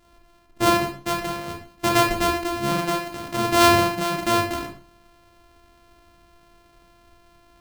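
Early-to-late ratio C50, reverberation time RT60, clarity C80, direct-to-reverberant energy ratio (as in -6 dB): 6.0 dB, 0.45 s, 10.5 dB, 0.5 dB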